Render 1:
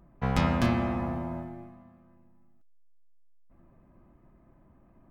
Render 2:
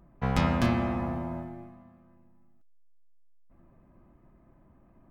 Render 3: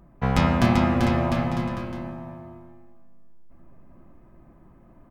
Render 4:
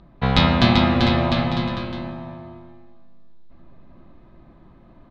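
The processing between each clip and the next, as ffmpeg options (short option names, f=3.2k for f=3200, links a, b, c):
-af anull
-af "aecho=1:1:390|702|951.6|1151|1311:0.631|0.398|0.251|0.158|0.1,volume=5dB"
-af "lowpass=f=3.9k:t=q:w=5.6,volume=3dB"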